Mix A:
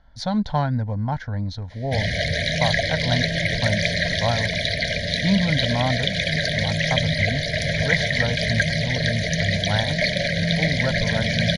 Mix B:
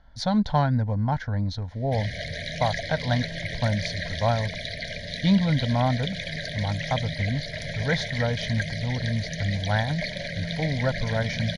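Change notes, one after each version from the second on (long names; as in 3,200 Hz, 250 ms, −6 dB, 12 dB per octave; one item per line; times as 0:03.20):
background −10.0 dB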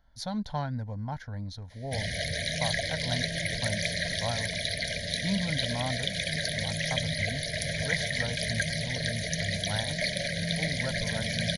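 speech −10.5 dB
master: remove high-frequency loss of the air 110 metres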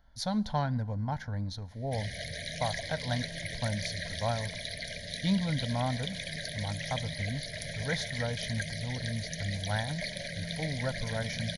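background −8.0 dB
reverb: on, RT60 1.6 s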